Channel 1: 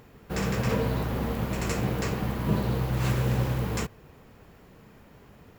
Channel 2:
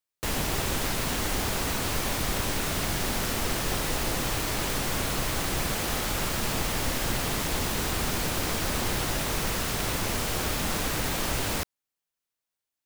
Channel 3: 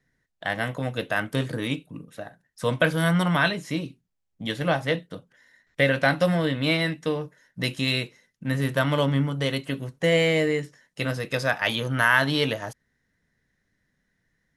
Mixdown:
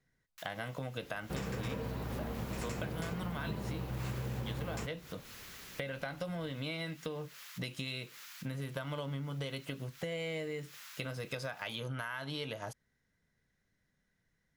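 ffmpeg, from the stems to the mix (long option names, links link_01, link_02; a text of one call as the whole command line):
ffmpeg -i stem1.wav -i stem2.wav -i stem3.wav -filter_complex "[0:a]adelay=1000,volume=-5.5dB[link_01];[1:a]highpass=frequency=1300:width=0.5412,highpass=frequency=1300:width=1.3066,equalizer=frequency=8800:width=5.9:gain=-11.5,adelay=150,volume=-18dB[link_02];[2:a]acompressor=threshold=-28dB:ratio=5,equalizer=frequency=280:width=2.1:gain=-3.5,bandreject=frequency=1800:width=8.6,volume=-4.5dB,asplit=2[link_03][link_04];[link_04]apad=whole_len=573450[link_05];[link_02][link_05]sidechaincompress=threshold=-52dB:ratio=5:attack=31:release=153[link_06];[link_01][link_06][link_03]amix=inputs=3:normalize=0,acompressor=threshold=-35dB:ratio=5" out.wav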